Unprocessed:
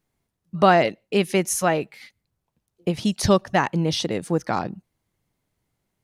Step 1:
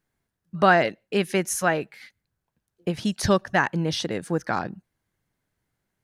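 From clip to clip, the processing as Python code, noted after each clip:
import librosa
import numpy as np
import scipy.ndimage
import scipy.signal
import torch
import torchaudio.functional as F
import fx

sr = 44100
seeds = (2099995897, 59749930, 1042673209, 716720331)

y = fx.peak_eq(x, sr, hz=1600.0, db=8.5, octaves=0.42)
y = y * 10.0 ** (-3.0 / 20.0)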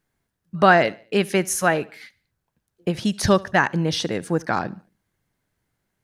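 y = fx.echo_feedback(x, sr, ms=73, feedback_pct=42, wet_db=-23)
y = y * 10.0 ** (3.0 / 20.0)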